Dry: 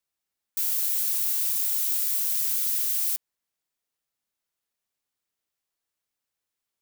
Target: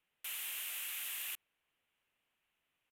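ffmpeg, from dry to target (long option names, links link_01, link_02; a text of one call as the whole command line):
ffmpeg -i in.wav -af "asetrate=103194,aresample=44100,aresample=32000,aresample=44100,highshelf=frequency=3700:width_type=q:width=3:gain=-9.5,volume=9dB" out.wav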